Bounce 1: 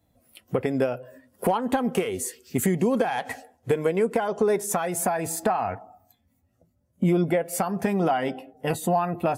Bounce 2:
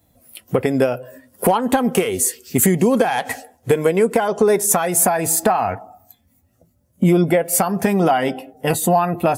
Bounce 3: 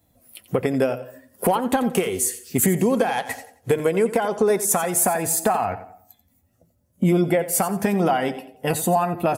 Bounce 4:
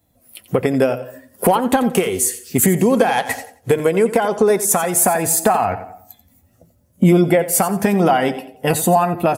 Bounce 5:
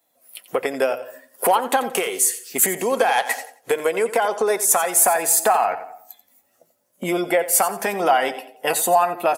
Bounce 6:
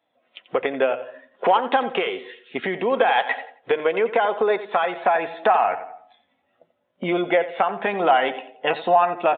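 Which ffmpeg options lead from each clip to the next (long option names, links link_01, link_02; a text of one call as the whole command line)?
ffmpeg -i in.wav -af "highshelf=frequency=6200:gain=8.5,volume=7dB" out.wav
ffmpeg -i in.wav -af "aecho=1:1:88|176|264:0.2|0.0579|0.0168,volume=-4dB" out.wav
ffmpeg -i in.wav -af "dynaudnorm=framelen=190:gausssize=3:maxgain=9dB" out.wav
ffmpeg -i in.wav -af "highpass=560" out.wav
ffmpeg -i in.wav -af "aresample=8000,aresample=44100" out.wav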